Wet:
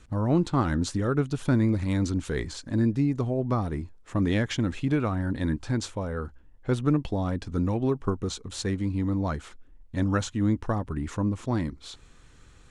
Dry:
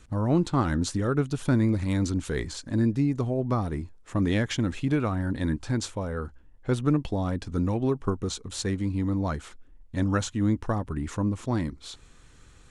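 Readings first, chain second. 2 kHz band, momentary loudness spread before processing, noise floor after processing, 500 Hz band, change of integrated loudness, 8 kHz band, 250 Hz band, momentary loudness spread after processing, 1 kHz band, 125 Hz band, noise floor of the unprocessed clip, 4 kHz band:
0.0 dB, 8 LU, -53 dBFS, 0.0 dB, 0.0 dB, -2.0 dB, 0.0 dB, 8 LU, 0.0 dB, 0.0 dB, -53 dBFS, -1.0 dB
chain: treble shelf 8.6 kHz -6 dB

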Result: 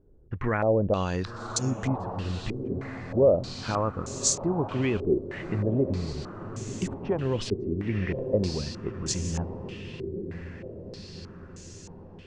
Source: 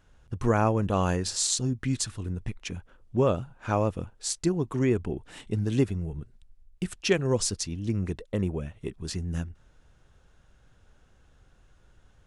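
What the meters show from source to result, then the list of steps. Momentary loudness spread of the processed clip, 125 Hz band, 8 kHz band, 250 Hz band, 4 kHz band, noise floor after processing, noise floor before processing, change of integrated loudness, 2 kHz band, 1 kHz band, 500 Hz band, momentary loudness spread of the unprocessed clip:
17 LU, -0.5 dB, -0.5 dB, 0.0 dB, -2.0 dB, -47 dBFS, -60 dBFS, 0.0 dB, 0.0 dB, -1.0 dB, +3.0 dB, 12 LU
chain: peak limiter -18.5 dBFS, peak gain reduction 7.5 dB; echo that smears into a reverb 1052 ms, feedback 60%, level -9 dB; step-sequenced low-pass 3.2 Hz 390–6700 Hz

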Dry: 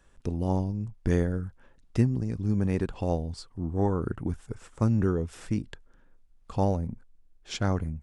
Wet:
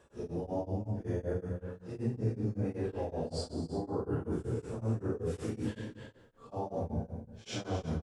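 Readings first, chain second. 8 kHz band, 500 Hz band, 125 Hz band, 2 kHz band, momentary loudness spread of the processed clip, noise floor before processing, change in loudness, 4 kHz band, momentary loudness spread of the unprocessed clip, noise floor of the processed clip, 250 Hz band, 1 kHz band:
-4.5 dB, -4.0 dB, -8.0 dB, -8.0 dB, 8 LU, -60 dBFS, -7.5 dB, -3.5 dB, 11 LU, -60 dBFS, -7.5 dB, -6.5 dB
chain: phase randomisation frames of 200 ms; de-esser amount 85%; high-pass 51 Hz; peaking EQ 490 Hz +10.5 dB 1.5 oct; reverse; compression 6:1, threshold -29 dBFS, peak gain reduction 13.5 dB; reverse; peak limiter -28 dBFS, peak gain reduction 8.5 dB; on a send: delay 281 ms -9 dB; on the sum: plate-style reverb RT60 0.96 s, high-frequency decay 0.85×, DRR 2 dB; tremolo of two beating tones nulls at 5.3 Hz; trim +1 dB

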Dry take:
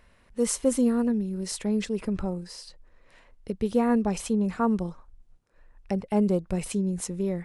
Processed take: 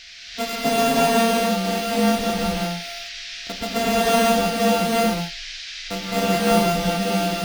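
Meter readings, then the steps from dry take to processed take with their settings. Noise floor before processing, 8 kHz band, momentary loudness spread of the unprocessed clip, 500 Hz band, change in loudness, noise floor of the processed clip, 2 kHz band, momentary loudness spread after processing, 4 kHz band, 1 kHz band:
-60 dBFS, +6.0 dB, 13 LU, +8.0 dB, +6.5 dB, -35 dBFS, +18.0 dB, 13 LU, +18.5 dB, +14.5 dB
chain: sorted samples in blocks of 64 samples; band noise 1.7–5.5 kHz -40 dBFS; gated-style reverb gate 400 ms rising, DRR -7.5 dB; trim -3 dB

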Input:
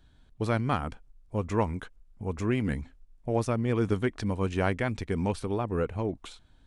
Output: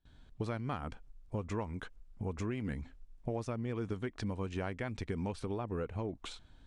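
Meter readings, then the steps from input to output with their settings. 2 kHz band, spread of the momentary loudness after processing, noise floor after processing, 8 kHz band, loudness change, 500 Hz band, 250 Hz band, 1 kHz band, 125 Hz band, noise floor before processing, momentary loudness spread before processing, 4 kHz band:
-9.5 dB, 8 LU, -60 dBFS, -7.5 dB, -9.0 dB, -9.5 dB, -8.5 dB, -10.0 dB, -8.5 dB, -60 dBFS, 12 LU, -6.0 dB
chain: low-pass 8.5 kHz 12 dB/octave; gate with hold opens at -51 dBFS; compression 6:1, threshold -35 dBFS, peak gain reduction 14 dB; trim +1 dB

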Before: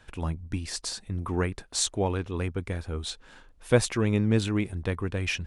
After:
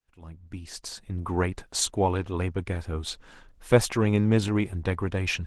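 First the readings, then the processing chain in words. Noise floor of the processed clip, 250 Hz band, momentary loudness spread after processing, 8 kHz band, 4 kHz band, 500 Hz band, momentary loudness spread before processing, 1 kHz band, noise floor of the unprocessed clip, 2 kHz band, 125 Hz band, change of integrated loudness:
-58 dBFS, +1.5 dB, 15 LU, 0.0 dB, 0.0 dB, +2.0 dB, 10 LU, +4.5 dB, -57 dBFS, +1.0 dB, +1.0 dB, +2.0 dB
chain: fade-in on the opening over 1.50 s; dynamic bell 870 Hz, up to +5 dB, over -48 dBFS, Q 2.7; trim +2 dB; Opus 16 kbps 48 kHz

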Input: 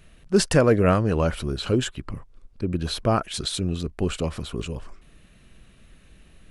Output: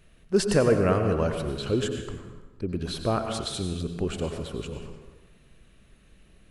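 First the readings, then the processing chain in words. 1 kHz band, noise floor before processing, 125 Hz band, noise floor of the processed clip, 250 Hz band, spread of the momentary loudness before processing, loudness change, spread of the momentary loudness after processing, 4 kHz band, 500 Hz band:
-4.0 dB, -54 dBFS, -4.0 dB, -57 dBFS, -3.5 dB, 15 LU, -3.0 dB, 15 LU, -4.5 dB, -2.0 dB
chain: peaking EQ 430 Hz +3.5 dB 0.78 oct; plate-style reverb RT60 1.2 s, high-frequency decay 0.7×, pre-delay 80 ms, DRR 5.5 dB; trim -5.5 dB

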